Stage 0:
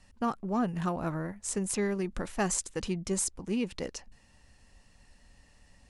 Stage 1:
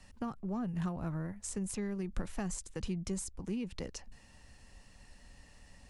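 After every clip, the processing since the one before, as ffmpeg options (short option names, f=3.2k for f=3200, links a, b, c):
-filter_complex "[0:a]acrossover=split=160[a][b];[b]acompressor=threshold=-43dB:ratio=5[c];[a][c]amix=inputs=2:normalize=0,volume=2.5dB"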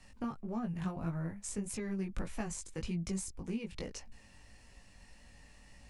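-af "equalizer=f=2.3k:w=4.6:g=4.5,flanger=delay=17.5:depth=3.2:speed=1.7,volume=2.5dB"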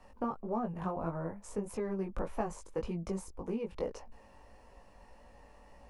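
-af "equalizer=f=125:t=o:w=1:g=-6,equalizer=f=500:t=o:w=1:g=9,equalizer=f=1k:t=o:w=1:g=9,equalizer=f=2k:t=o:w=1:g=-5,equalizer=f=4k:t=o:w=1:g=-6,equalizer=f=8k:t=o:w=1:g=-10"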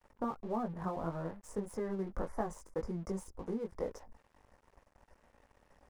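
-af "asuperstop=centerf=3200:order=20:qfactor=1.3,aeval=exprs='sgn(val(0))*max(abs(val(0))-0.00158,0)':c=same,volume=-1dB"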